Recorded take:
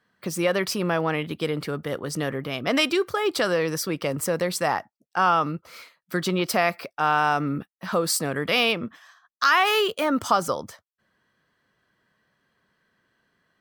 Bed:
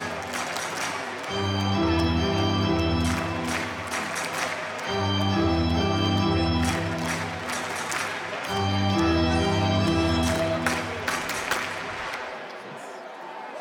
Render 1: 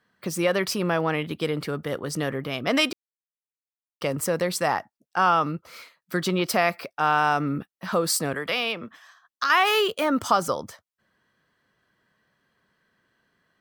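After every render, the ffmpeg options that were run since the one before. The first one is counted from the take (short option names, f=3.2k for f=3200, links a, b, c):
-filter_complex "[0:a]asettb=1/sr,asplit=3[a][b][c];[a]atrim=end=8.334[d];[b]atrim=start=8.33:end=9.5,asetpts=PTS-STARTPTS,afade=t=in:d=0.004:c=qsin,afade=t=out:st=1.166:d=0.004:c=qsin,acrossover=split=180|470|5700[e][f][g][h];[e]acompressor=threshold=-50dB:ratio=3[i];[f]acompressor=threshold=-41dB:ratio=3[j];[g]acompressor=threshold=-24dB:ratio=3[k];[h]acompressor=threshold=-49dB:ratio=3[l];[i][j][k][l]amix=inputs=4:normalize=0[m];[c]atrim=start=9.496[n];[d][m]acrossfade=d=0.004:c1=hsin:c2=qsin[o];[o][n]acrossfade=d=0.004:c1=qsin:c2=hsin,asplit=3[p][q][r];[p]atrim=end=2.93,asetpts=PTS-STARTPTS,afade=t=out:st=2.926:d=0.004:c=hsin[s];[q]atrim=start=2.93:end=4.01,asetpts=PTS-STARTPTS,volume=0[t];[r]atrim=start=4.01,asetpts=PTS-STARTPTS,afade=t=in:d=0.004:c=hsin[u];[s][t][u]concat=n=3:v=0:a=1"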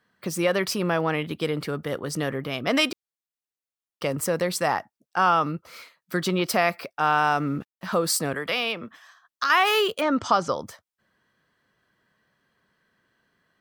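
-filter_complex "[0:a]asettb=1/sr,asplit=3[a][b][c];[a]atrim=end=7.264[d];[b]atrim=start=7.26:end=7.91,asetpts=PTS-STARTPTS,afade=t=in:d=0.004:c=qsin,afade=t=out:st=0.646:d=0.004:c=qsin,aeval=exprs='sgn(val(0))*max(abs(val(0))-0.00188,0)':c=same[e];[c]atrim=start=7.906[f];[d][e]acrossfade=d=0.004:c1=hsin:c2=qsin[g];[g][f]acrossfade=d=0.004:c1=qsin:c2=hsin,asplit=3[h][i][j];[h]afade=t=out:st=10:d=0.02[k];[i]lowpass=f=6.4k:w=0.5412,lowpass=f=6.4k:w=1.3066,afade=t=in:st=10:d=0.02,afade=t=out:st=10.58:d=0.02[l];[j]afade=t=in:st=10.58:d=0.02[m];[k][l][m]amix=inputs=3:normalize=0"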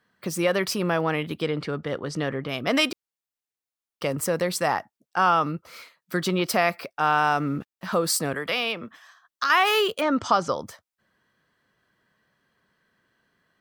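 -filter_complex "[0:a]asettb=1/sr,asplit=3[a][b][c];[a]atrim=end=1.424[d];[b]atrim=start=1.42:end=2.49,asetpts=PTS-STARTPTS,afade=t=in:d=0.004:c=qsin,afade=t=out:st=1.066:d=0.004:c=qsin,lowpass=5.4k[e];[c]atrim=start=2.486[f];[d][e]acrossfade=d=0.004:c1=hsin:c2=qsin[g];[g][f]acrossfade=d=0.004:c1=qsin:c2=hsin"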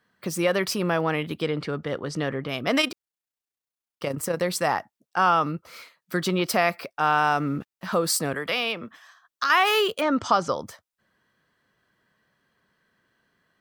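-filter_complex "[0:a]asettb=1/sr,asplit=3[a][b][c];[a]atrim=end=2.814[d];[b]atrim=start=2.81:end=4.41,asetpts=PTS-STARTPTS,afade=t=in:d=0.004:c=qsin,afade=t=out:st=1.596:d=0.004:c=qsin,tremolo=f=30:d=0.519[e];[c]atrim=start=4.406[f];[d][e]acrossfade=d=0.004:c1=hsin:c2=qsin[g];[g][f]acrossfade=d=0.004:c1=qsin:c2=hsin"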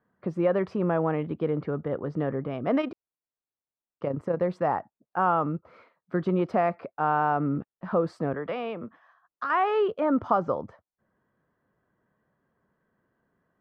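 -af "lowpass=1k"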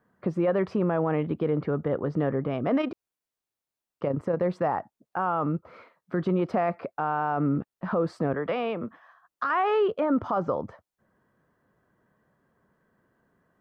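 -filter_complex "[0:a]asplit=2[a][b];[b]acompressor=threshold=-31dB:ratio=6,volume=-3dB[c];[a][c]amix=inputs=2:normalize=0,alimiter=limit=-17dB:level=0:latency=1:release=15"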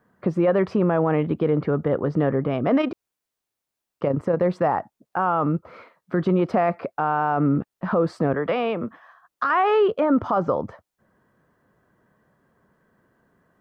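-af "volume=5dB"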